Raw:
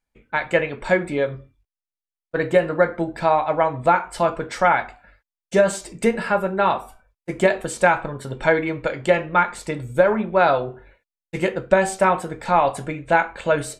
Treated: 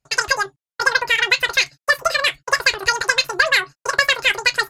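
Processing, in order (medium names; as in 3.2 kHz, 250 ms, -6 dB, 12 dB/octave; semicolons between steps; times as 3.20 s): resampled via 11.025 kHz; Chebyshev shaper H 6 -37 dB, 8 -33 dB, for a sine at -2 dBFS; wide varispeed 2.94×; trim +1.5 dB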